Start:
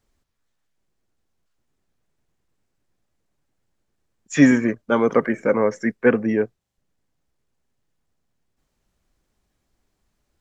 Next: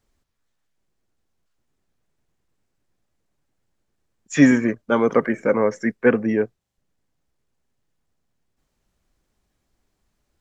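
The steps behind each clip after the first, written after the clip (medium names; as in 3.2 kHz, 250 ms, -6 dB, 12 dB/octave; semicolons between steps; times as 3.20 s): no audible change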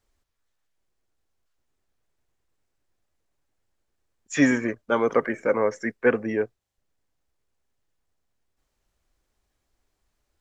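peaking EQ 180 Hz -8 dB 1.3 oct; trim -2 dB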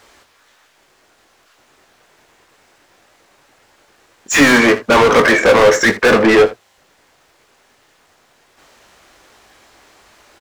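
overdrive pedal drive 38 dB, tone 3.1 kHz, clips at -5.5 dBFS; on a send: early reflections 21 ms -8.5 dB, 59 ms -17.5 dB, 79 ms -16.5 dB; on the sum: trim +2.5 dB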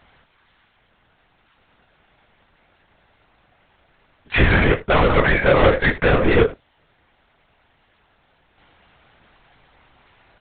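on a send at -24 dB: reverberation RT60 0.20 s, pre-delay 3 ms; on the sum: LPC vocoder at 8 kHz whisper; trim -5 dB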